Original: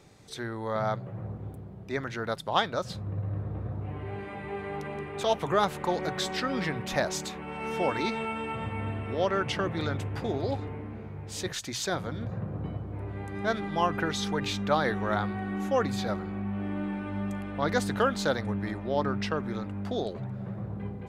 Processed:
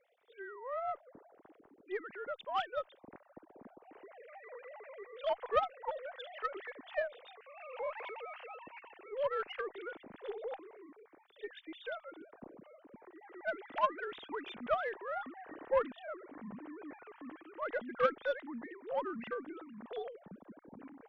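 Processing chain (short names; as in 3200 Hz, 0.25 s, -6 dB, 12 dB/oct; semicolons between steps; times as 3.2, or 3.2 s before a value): sine-wave speech; added harmonics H 3 -16 dB, 4 -38 dB, 6 -34 dB, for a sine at -9.5 dBFS; gain -5.5 dB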